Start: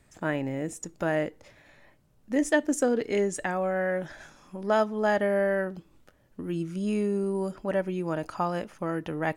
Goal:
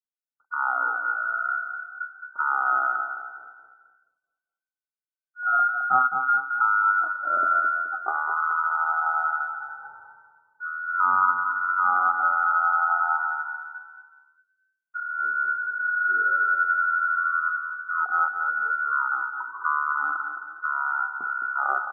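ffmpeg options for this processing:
-filter_complex "[0:a]afftdn=nr=12:nf=-38,agate=range=0.00562:threshold=0.00158:ratio=16:detection=peak,adynamicequalizer=threshold=0.00398:dfrequency=170:dqfactor=1.1:tfrequency=170:tqfactor=1.1:attack=5:release=100:ratio=0.375:range=2:mode=boostabove:tftype=bell,asplit=2[s0][s1];[s1]acompressor=threshold=0.00891:ratio=16,volume=0.891[s2];[s0][s2]amix=inputs=2:normalize=0,asplit=6[s3][s4][s5][s6][s7][s8];[s4]adelay=91,afreqshift=-31,volume=0.473[s9];[s5]adelay=182,afreqshift=-62,volume=0.2[s10];[s6]adelay=273,afreqshift=-93,volume=0.0832[s11];[s7]adelay=364,afreqshift=-124,volume=0.0351[s12];[s8]adelay=455,afreqshift=-155,volume=0.0148[s13];[s3][s9][s10][s11][s12][s13]amix=inputs=6:normalize=0,lowpass=f=3100:t=q:w=0.5098,lowpass=f=3100:t=q:w=0.6013,lowpass=f=3100:t=q:w=0.9,lowpass=f=3100:t=q:w=2.563,afreqshift=-3600,asetrate=18846,aresample=44100"

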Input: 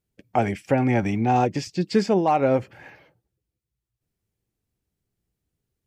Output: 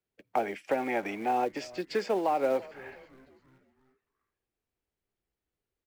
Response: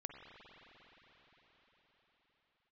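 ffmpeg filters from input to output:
-filter_complex "[0:a]acrossover=split=150|500[s0][s1][s2];[s0]acompressor=threshold=0.02:ratio=4[s3];[s1]acompressor=threshold=0.0794:ratio=4[s4];[s2]acompressor=threshold=0.0447:ratio=4[s5];[s3][s4][s5]amix=inputs=3:normalize=0,asubboost=boost=2.5:cutoff=75,asplit=5[s6][s7][s8][s9][s10];[s7]adelay=338,afreqshift=-130,volume=0.106[s11];[s8]adelay=676,afreqshift=-260,volume=0.055[s12];[s9]adelay=1014,afreqshift=-390,volume=0.0285[s13];[s10]adelay=1352,afreqshift=-520,volume=0.015[s14];[s6][s11][s12][s13][s14]amix=inputs=5:normalize=0,acrossover=split=220|2400[s15][s16][s17];[s15]acompressor=threshold=0.00708:ratio=12[s18];[s18][s16][s17]amix=inputs=3:normalize=0,acrusher=bits=5:mode=log:mix=0:aa=0.000001,bass=f=250:g=-14,treble=f=4000:g=-10,volume=0.841"

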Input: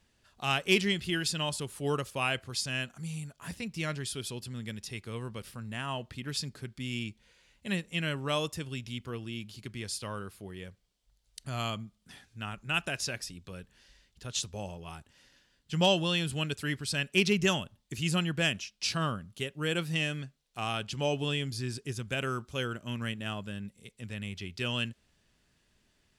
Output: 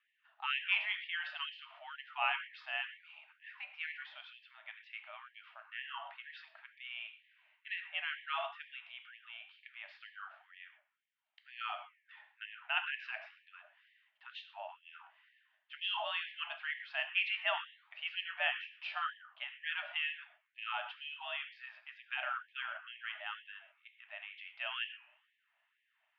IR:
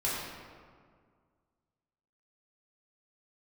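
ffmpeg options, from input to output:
-filter_complex "[0:a]flanger=delay=9.8:depth=6.8:regen=-90:speed=0.94:shape=sinusoidal,highpass=f=260:t=q:w=0.5412,highpass=f=260:t=q:w=1.307,lowpass=f=2800:t=q:w=0.5176,lowpass=f=2800:t=q:w=0.7071,lowpass=f=2800:t=q:w=1.932,afreqshift=66,asplit=2[s0][s1];[1:a]atrim=start_sample=2205,afade=t=out:st=0.17:d=0.01,atrim=end_sample=7938,asetrate=40131,aresample=44100[s2];[s1][s2]afir=irnorm=-1:irlink=0,volume=0.335[s3];[s0][s3]amix=inputs=2:normalize=0,afftfilt=real='re*gte(b*sr/1024,560*pow(1700/560,0.5+0.5*sin(2*PI*2.1*pts/sr)))':imag='im*gte(b*sr/1024,560*pow(1700/560,0.5+0.5*sin(2*PI*2.1*pts/sr)))':win_size=1024:overlap=0.75"

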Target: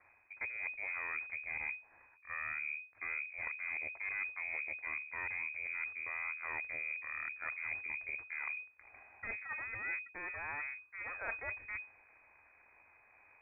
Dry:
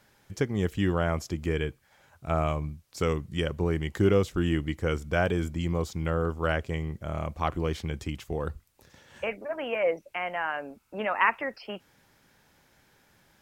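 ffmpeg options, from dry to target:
-af "equalizer=f=240:t=o:w=0.21:g=-10.5,aeval=exprs='max(val(0),0)':c=same,areverse,acompressor=threshold=0.01:ratio=6,areverse,lowpass=f=2100:t=q:w=0.5098,lowpass=f=2100:t=q:w=0.6013,lowpass=f=2100:t=q:w=0.9,lowpass=f=2100:t=q:w=2.563,afreqshift=-2500,lowshelf=f=120:t=q:w=3:g=7,volume=1.41"

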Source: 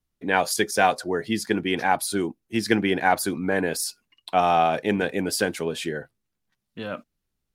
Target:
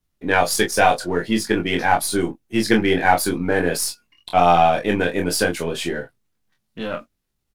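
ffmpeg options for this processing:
-af "aeval=exprs='if(lt(val(0),0),0.708*val(0),val(0))':c=same,aecho=1:1:23|41:0.668|0.282,volume=1.58"

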